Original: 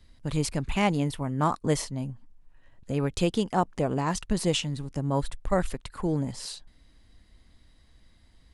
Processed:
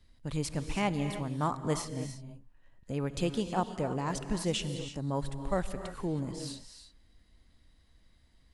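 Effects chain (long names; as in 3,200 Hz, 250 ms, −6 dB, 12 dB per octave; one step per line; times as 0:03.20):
reverb whose tail is shaped and stops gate 350 ms rising, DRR 8.5 dB
level −6 dB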